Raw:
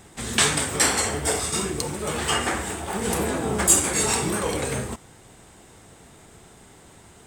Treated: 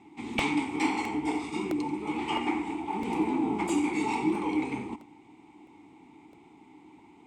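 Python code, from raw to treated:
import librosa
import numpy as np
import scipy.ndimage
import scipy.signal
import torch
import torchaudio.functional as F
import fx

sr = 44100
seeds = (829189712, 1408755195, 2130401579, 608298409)

y = fx.vowel_filter(x, sr, vowel='u')
y = fx.high_shelf(y, sr, hz=12000.0, db=-6.5)
y = y + 10.0 ** (-15.5 / 20.0) * np.pad(y, (int(88 * sr / 1000.0), 0))[:len(y)]
y = fx.buffer_crackle(y, sr, first_s=0.39, period_s=0.66, block=64, kind='repeat')
y = F.gain(torch.from_numpy(y), 8.5).numpy()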